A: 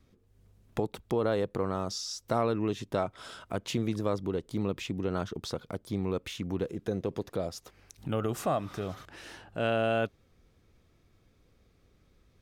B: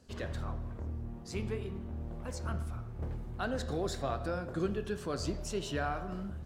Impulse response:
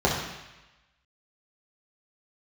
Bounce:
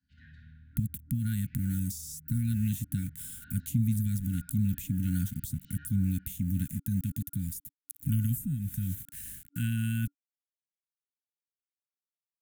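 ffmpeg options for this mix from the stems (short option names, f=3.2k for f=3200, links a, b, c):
-filter_complex "[0:a]aemphasis=mode=production:type=50fm,aeval=exprs='val(0)*gte(abs(val(0)),0.00596)':c=same,aexciter=amount=11.4:drive=4.4:freq=7.3k,volume=-2.5dB[a];[1:a]acrossover=split=480 4100:gain=0.0794 1 0.0891[b][c][d];[b][c][d]amix=inputs=3:normalize=0,volume=-16dB,asplit=2[e][f];[f]volume=-10dB[g];[2:a]atrim=start_sample=2205[h];[g][h]afir=irnorm=-1:irlink=0[i];[a][e][i]amix=inputs=3:normalize=0,afftfilt=real='re*(1-between(b*sr/4096,290,1400))':imag='im*(1-between(b*sr/4096,290,1400))':win_size=4096:overlap=0.75,bass=f=250:g=12,treble=f=4k:g=-4,acrossover=split=300[j][k];[k]acompressor=threshold=-39dB:ratio=10[l];[j][l]amix=inputs=2:normalize=0"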